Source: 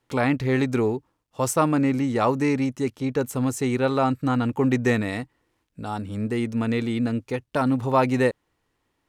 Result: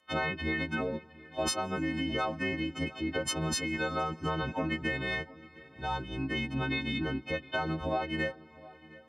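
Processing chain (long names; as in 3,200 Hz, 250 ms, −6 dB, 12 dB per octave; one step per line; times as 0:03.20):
every partial snapped to a pitch grid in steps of 3 semitones
low-shelf EQ 320 Hz −8.5 dB
downward compressor 10 to 1, threshold −28 dBFS, peak gain reduction 15.5 dB
phase-vocoder pitch shift with formants kept −8.5 semitones
tape delay 712 ms, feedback 24%, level −19.5 dB, low-pass 2,800 Hz
on a send at −23 dB: convolution reverb RT60 5.2 s, pre-delay 95 ms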